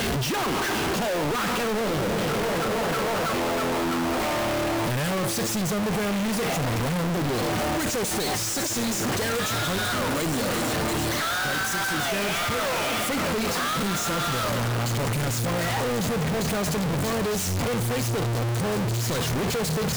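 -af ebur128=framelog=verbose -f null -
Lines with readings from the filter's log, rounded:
Integrated loudness:
  I:         -25.1 LUFS
  Threshold: -35.1 LUFS
Loudness range:
  LRA:         0.7 LU
  Threshold: -45.1 LUFS
  LRA low:   -25.4 LUFS
  LRA high:  -24.7 LUFS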